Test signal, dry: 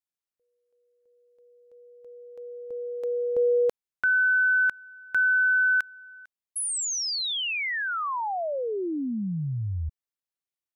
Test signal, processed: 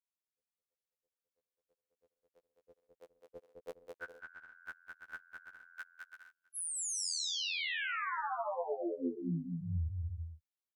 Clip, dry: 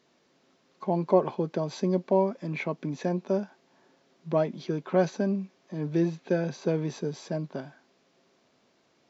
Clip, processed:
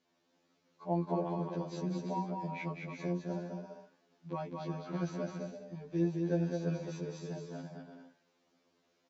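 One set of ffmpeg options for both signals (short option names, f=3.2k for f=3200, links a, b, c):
-af "aecho=1:1:210|336|411.6|457|484.2:0.631|0.398|0.251|0.158|0.1,afftfilt=real='re*2*eq(mod(b,4),0)':imag='im*2*eq(mod(b,4),0)':win_size=2048:overlap=0.75,volume=-8dB"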